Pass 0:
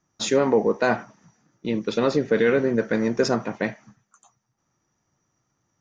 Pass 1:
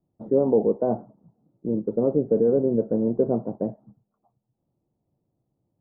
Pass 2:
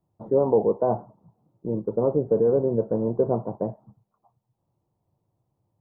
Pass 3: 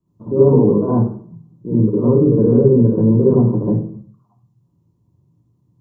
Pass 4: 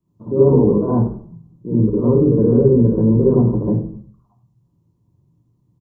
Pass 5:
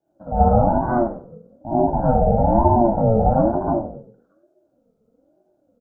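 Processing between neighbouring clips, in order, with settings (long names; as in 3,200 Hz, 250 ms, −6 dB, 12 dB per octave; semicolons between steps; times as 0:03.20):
inverse Chebyshev low-pass filter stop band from 2,300 Hz, stop band 60 dB
graphic EQ with 15 bands 100 Hz +6 dB, 250 Hz −6 dB, 1,000 Hz +10 dB
convolution reverb RT60 0.55 s, pre-delay 53 ms, DRR −6 dB; level −6 dB
echo with shifted repeats 91 ms, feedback 31%, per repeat −64 Hz, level −18 dB; level −1 dB
ring modulator whose carrier an LFO sweeps 410 Hz, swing 20%, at 1.1 Hz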